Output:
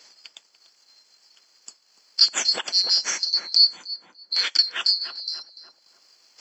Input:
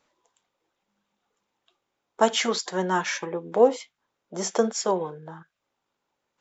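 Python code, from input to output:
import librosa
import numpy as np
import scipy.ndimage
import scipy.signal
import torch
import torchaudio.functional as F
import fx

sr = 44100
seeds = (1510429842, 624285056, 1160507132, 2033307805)

y = fx.band_swap(x, sr, width_hz=4000)
y = scipy.signal.sosfilt(scipy.signal.bessel(2, 380.0, 'highpass', norm='mag', fs=sr, output='sos'), y)
y = fx.high_shelf(y, sr, hz=5300.0, db=-6.0)
y = fx.transient(y, sr, attack_db=5, sustain_db=-6)
y = fx.rider(y, sr, range_db=10, speed_s=2.0)
y = fx.echo_filtered(y, sr, ms=292, feedback_pct=28, hz=1300.0, wet_db=-10.5)
y = fx.band_squash(y, sr, depth_pct=70)
y = F.gain(torch.from_numpy(y), 3.5).numpy()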